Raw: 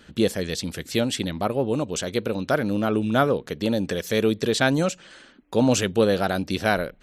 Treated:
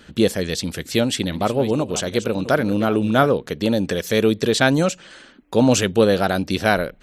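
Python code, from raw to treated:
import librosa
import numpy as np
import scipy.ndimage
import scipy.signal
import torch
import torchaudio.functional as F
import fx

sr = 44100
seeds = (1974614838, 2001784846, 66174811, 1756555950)

y = fx.reverse_delay(x, sr, ms=394, wet_db=-13.0, at=(0.92, 3.26))
y = F.gain(torch.from_numpy(y), 4.0).numpy()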